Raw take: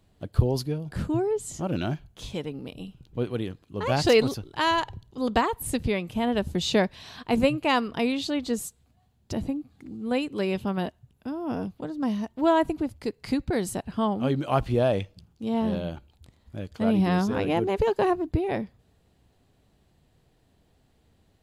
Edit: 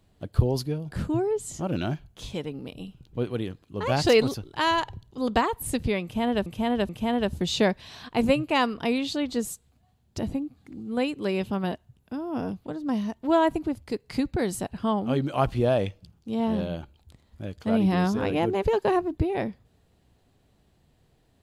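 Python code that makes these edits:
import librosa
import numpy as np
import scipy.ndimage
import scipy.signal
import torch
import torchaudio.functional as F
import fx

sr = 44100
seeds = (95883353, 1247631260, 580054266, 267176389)

y = fx.edit(x, sr, fx.repeat(start_s=6.03, length_s=0.43, count=3), tone=tone)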